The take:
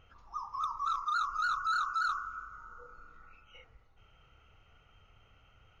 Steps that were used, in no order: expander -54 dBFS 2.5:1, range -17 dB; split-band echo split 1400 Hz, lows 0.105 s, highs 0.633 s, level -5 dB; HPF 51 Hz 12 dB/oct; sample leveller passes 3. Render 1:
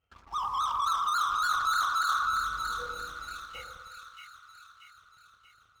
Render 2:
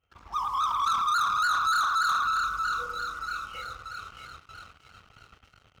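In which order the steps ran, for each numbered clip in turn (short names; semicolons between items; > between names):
HPF > expander > sample leveller > split-band echo; split-band echo > expander > sample leveller > HPF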